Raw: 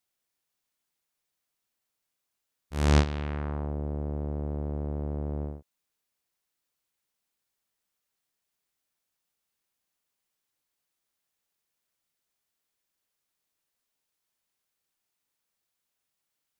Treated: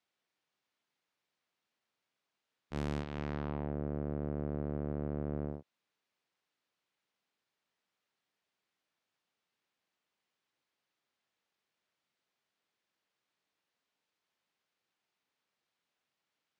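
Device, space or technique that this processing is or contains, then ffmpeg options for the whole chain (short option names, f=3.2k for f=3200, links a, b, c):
AM radio: -af "highpass=130,lowpass=3.9k,acompressor=threshold=-30dB:ratio=10,asoftclip=type=tanh:threshold=-26dB,volume=2.5dB"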